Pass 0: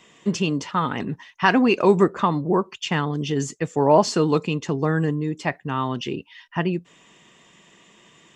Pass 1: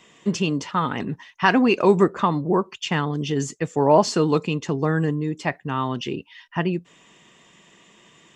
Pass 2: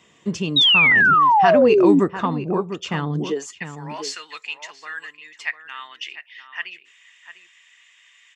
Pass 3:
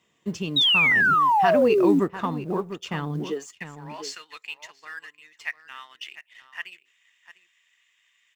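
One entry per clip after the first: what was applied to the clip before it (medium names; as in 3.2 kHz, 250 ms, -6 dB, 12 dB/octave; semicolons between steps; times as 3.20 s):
no audible change
high-pass sweep 72 Hz -> 2 kHz, 3.05–3.59 s; echo from a far wall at 120 m, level -10 dB; painted sound fall, 0.56–2.00 s, 260–3900 Hz -11 dBFS; trim -3 dB
companding laws mixed up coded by A; trim -4.5 dB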